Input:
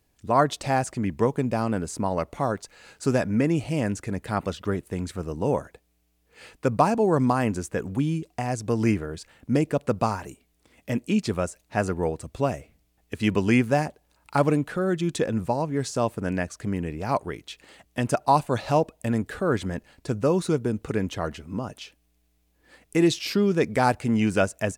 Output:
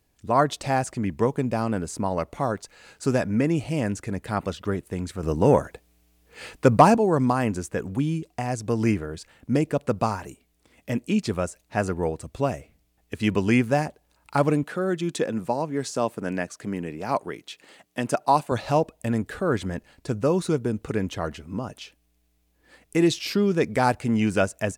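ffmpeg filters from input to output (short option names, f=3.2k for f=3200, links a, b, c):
-filter_complex "[0:a]asettb=1/sr,asplit=3[a][b][c];[a]atrim=end=5.234[d];[b]atrim=start=5.23:end=6.97,asetpts=PTS-STARTPTS,afade=t=in:d=0.004:c=qsin,afade=t=out:st=1.736:d=0.004:c=qsin,acontrast=80[e];[c]atrim=start=6.966[f];[d][e]acrossfade=d=0.004:c1=hsin:c2=qsin[g];[g][f]acrossfade=d=0.004:c1=qsin:c2=hsin,asettb=1/sr,asplit=3[h][i][j];[h]atrim=end=14.634[k];[i]atrim=start=14.63:end=18.52,asetpts=PTS-STARTPTS,afade=t=in:d=0.004:c=qsin,afade=t=out:st=3.886:d=0.004:c=qsin,highpass=170[l];[j]atrim=start=18.516[m];[k][l]acrossfade=d=0.004:c1=hsin:c2=qsin[n];[n][m]acrossfade=d=0.004:c1=qsin:c2=hsin"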